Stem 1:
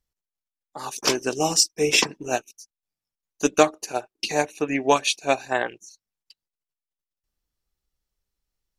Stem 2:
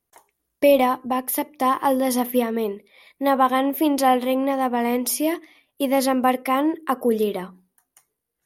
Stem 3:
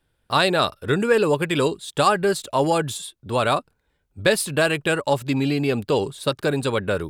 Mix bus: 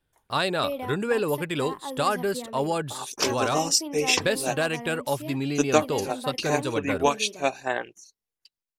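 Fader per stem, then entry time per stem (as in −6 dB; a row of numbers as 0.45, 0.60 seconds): −3.5, −16.0, −6.5 decibels; 2.15, 0.00, 0.00 seconds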